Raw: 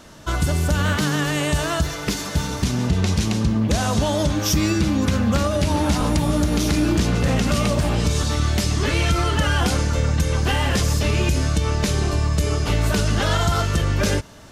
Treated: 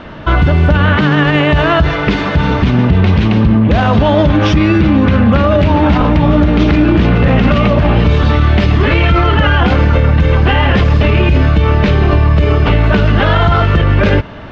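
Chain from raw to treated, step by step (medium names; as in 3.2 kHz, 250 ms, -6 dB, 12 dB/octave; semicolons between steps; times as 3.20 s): low-pass 3 kHz 24 dB/octave; loudness maximiser +16 dB; trim -1 dB; AAC 128 kbps 48 kHz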